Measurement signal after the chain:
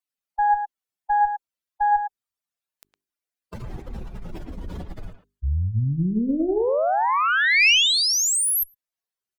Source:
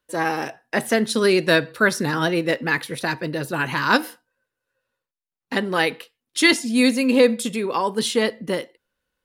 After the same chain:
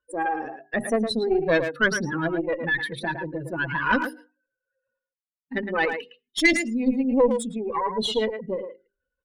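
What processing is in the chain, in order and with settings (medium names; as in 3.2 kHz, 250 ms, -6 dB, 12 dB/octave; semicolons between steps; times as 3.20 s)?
spectral contrast enhancement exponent 2.6; hum notches 50/100/150/200/250/300/350/400 Hz; dynamic bell 2.6 kHz, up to +6 dB, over -39 dBFS, Q 2.2; Chebyshev shaper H 3 -27 dB, 4 -16 dB, 5 -42 dB, 6 -34 dB, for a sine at -3.5 dBFS; speakerphone echo 110 ms, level -7 dB; trim -3 dB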